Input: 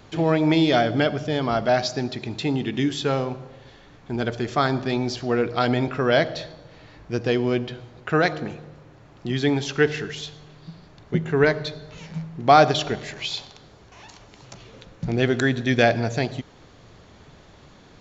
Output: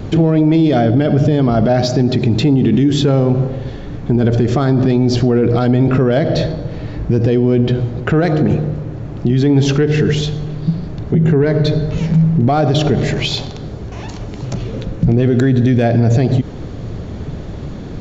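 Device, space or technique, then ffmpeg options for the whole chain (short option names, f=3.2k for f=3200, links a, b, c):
mastering chain: -af "equalizer=f=960:t=o:w=0.77:g=-3,acompressor=threshold=-24dB:ratio=3,asoftclip=type=tanh:threshold=-15dB,tiltshelf=f=640:g=8.5,alimiter=level_in=22dB:limit=-1dB:release=50:level=0:latency=1,volume=-4.5dB"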